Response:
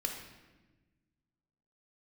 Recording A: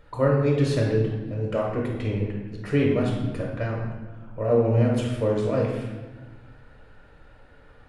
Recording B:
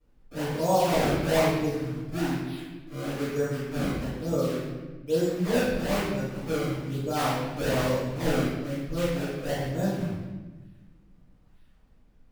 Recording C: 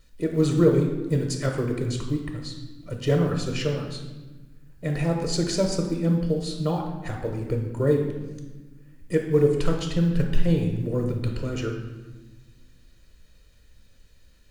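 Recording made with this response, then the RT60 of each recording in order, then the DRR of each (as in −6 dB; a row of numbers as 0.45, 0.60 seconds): C; 1.2, 1.2, 1.2 seconds; −2.0, −10.5, 2.5 decibels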